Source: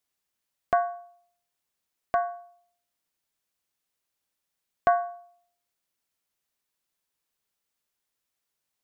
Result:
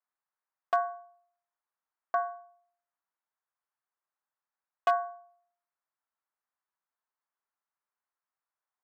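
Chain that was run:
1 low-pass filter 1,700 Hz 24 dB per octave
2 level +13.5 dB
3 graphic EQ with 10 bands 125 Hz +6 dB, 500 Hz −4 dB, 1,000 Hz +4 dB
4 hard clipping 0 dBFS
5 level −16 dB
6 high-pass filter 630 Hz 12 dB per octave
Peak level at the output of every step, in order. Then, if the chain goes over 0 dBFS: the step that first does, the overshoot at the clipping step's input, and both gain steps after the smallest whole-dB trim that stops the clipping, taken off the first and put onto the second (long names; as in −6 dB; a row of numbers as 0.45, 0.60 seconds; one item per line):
−9.5, +4.0, +5.0, 0.0, −16.0, −13.5 dBFS
step 2, 5.0 dB
step 2 +8.5 dB, step 5 −11 dB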